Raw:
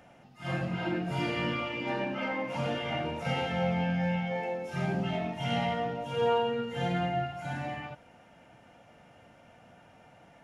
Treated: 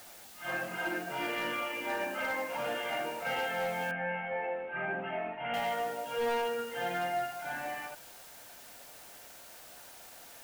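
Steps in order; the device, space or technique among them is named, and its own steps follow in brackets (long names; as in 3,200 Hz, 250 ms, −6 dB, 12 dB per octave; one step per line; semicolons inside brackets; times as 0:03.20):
drive-through speaker (band-pass filter 430–3,200 Hz; parametric band 1,600 Hz +7 dB 0.21 octaves; hard clipping −27.5 dBFS, distortion −15 dB; white noise bed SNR 16 dB)
0:03.91–0:05.54: Butterworth low-pass 2,800 Hz 48 dB per octave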